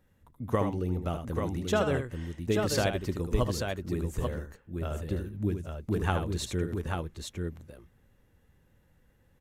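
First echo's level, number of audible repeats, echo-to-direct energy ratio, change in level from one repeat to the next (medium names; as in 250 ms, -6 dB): -7.5 dB, 2, -3.0 dB, no regular repeats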